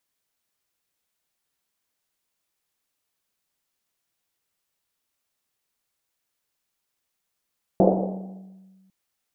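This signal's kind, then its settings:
drum after Risset, pitch 190 Hz, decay 1.75 s, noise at 520 Hz, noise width 470 Hz, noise 55%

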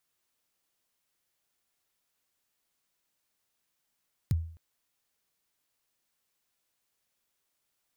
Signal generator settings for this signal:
synth kick length 0.26 s, from 160 Hz, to 82 Hz, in 24 ms, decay 0.50 s, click on, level −20 dB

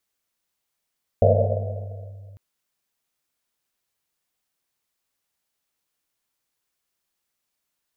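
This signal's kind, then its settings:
drum after Risset length 1.15 s, pitch 99 Hz, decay 2.91 s, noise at 570 Hz, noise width 210 Hz, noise 50%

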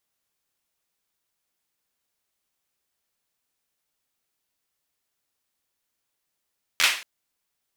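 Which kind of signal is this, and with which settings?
synth clap length 0.23 s, apart 12 ms, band 2,400 Hz, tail 0.42 s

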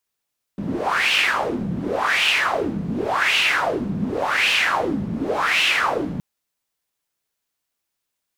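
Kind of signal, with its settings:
wind from filtered noise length 5.62 s, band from 180 Hz, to 2,800 Hz, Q 4.7, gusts 5, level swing 7.5 dB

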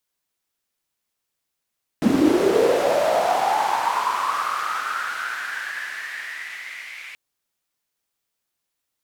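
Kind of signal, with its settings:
filter sweep on noise white, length 5.13 s bandpass, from 220 Hz, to 2,200 Hz, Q 7.4, linear, gain ramp −30.5 dB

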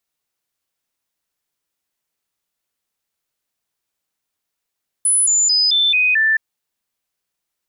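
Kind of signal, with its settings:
stepped sweep 10,000 Hz down, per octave 2, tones 6, 0.22 s, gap 0.00 s −12 dBFS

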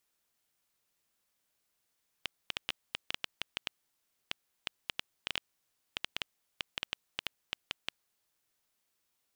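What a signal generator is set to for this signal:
Geiger counter clicks 5.7 per second −14.5 dBFS 5.81 s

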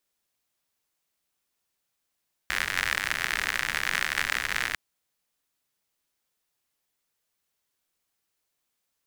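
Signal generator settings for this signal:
rain-like ticks over hiss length 2.25 s, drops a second 84, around 1,800 Hz, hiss −14 dB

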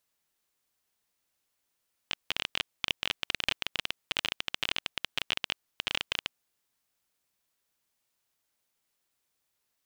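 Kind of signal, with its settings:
Geiger counter clicks 21 per second −11 dBFS 4.20 s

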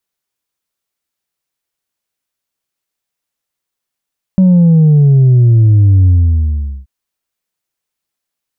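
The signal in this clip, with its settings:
bass drop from 190 Hz, over 2.48 s, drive 2 dB, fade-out 0.79 s, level −4.5 dB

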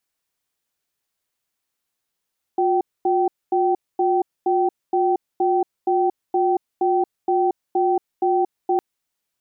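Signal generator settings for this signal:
tone pair in a cadence 359 Hz, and 772 Hz, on 0.23 s, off 0.24 s, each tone −18.5 dBFS 6.21 s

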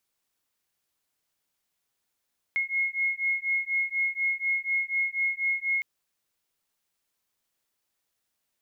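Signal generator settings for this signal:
two tones that beat 2,160 Hz, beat 4.1 Hz, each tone −28 dBFS 3.26 s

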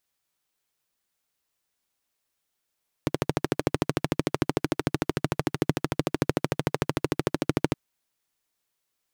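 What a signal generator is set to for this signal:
pulse-train model of a single-cylinder engine, steady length 4.67 s, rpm 1,600, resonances 150/300 Hz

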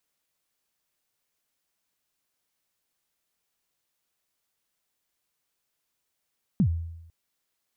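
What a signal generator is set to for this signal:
synth kick length 0.50 s, from 230 Hz, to 83 Hz, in 81 ms, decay 0.89 s, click off, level −16 dB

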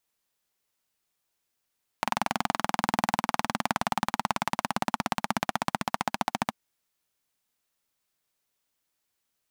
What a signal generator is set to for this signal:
pulse-train model of a single-cylinder engine, changing speed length 4.49 s, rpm 2,600, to 1,700, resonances 220/820 Hz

